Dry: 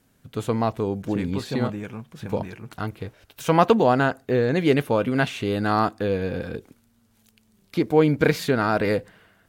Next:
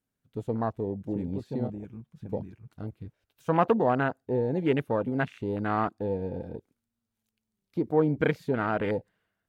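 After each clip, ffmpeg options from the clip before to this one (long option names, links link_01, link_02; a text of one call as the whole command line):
ffmpeg -i in.wav -af "afwtdn=0.0501,volume=-6dB" out.wav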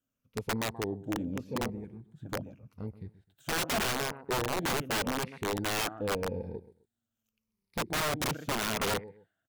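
ffmpeg -i in.wav -filter_complex "[0:a]afftfilt=real='re*pow(10,10/40*sin(2*PI*(0.86*log(max(b,1)*sr/1024/100)/log(2)-(-0.84)*(pts-256)/sr)))':imag='im*pow(10,10/40*sin(2*PI*(0.86*log(max(b,1)*sr/1024/100)/log(2)-(-0.84)*(pts-256)/sr)))':win_size=1024:overlap=0.75,asplit=2[link_01][link_02];[link_02]adelay=129,lowpass=frequency=2400:poles=1,volume=-16.5dB,asplit=2[link_03][link_04];[link_04]adelay=129,lowpass=frequency=2400:poles=1,volume=0.25[link_05];[link_01][link_03][link_05]amix=inputs=3:normalize=0,aeval=exprs='(mod(11.9*val(0)+1,2)-1)/11.9':channel_layout=same,volume=-3.5dB" out.wav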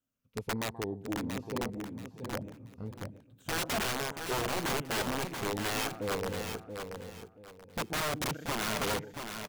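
ffmpeg -i in.wav -af "aecho=1:1:681|1362|2043:0.447|0.121|0.0326,volume=-2dB" out.wav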